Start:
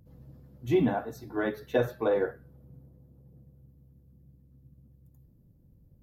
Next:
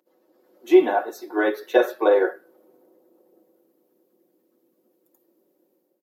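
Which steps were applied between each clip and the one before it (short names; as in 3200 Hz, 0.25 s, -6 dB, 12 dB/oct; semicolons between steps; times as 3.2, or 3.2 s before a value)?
elliptic high-pass 320 Hz, stop band 70 dB; comb 5.4 ms, depth 46%; AGC gain up to 10 dB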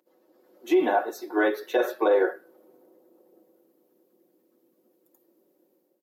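limiter -13 dBFS, peak gain reduction 9 dB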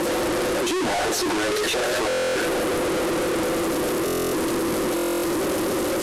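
infinite clipping; LPF 11000 Hz 24 dB/oct; stuck buffer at 2.08/4.05/4.95, samples 1024, times 11; gain +6.5 dB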